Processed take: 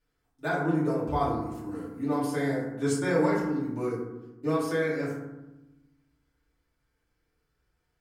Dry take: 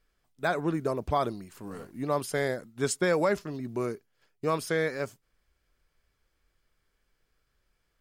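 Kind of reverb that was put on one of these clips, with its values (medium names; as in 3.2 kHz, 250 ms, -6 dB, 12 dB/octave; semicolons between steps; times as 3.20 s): FDN reverb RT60 1 s, low-frequency decay 1.6×, high-frequency decay 0.4×, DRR -9 dB; trim -10.5 dB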